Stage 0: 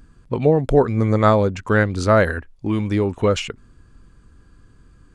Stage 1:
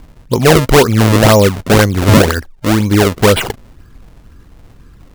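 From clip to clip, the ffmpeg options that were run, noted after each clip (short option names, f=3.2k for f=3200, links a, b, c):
-af "acrusher=samples=33:mix=1:aa=0.000001:lfo=1:lforange=52.8:lforate=2,apsyclip=11dB,volume=-1.5dB"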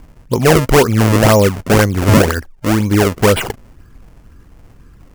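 -af "equalizer=f=3.8k:w=2.9:g=-5.5,volume=-2dB"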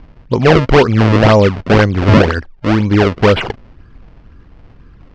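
-af "lowpass=f=4.5k:w=0.5412,lowpass=f=4.5k:w=1.3066,volume=1.5dB"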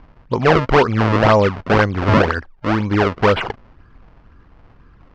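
-af "equalizer=f=1.1k:w=0.78:g=7,volume=-7dB"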